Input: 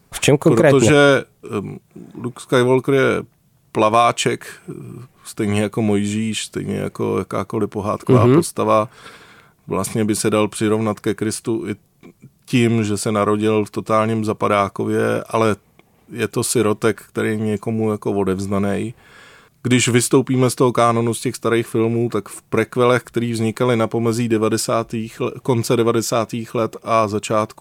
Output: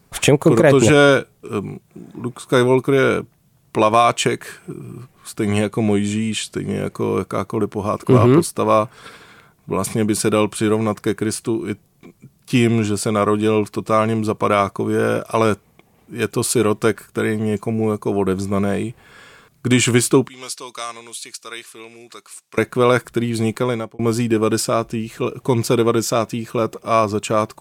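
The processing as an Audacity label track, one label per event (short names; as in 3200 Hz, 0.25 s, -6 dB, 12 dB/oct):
5.560000	6.920000	LPF 12000 Hz
20.280000	22.580000	band-pass 5500 Hz, Q 0.88
23.530000	23.990000	fade out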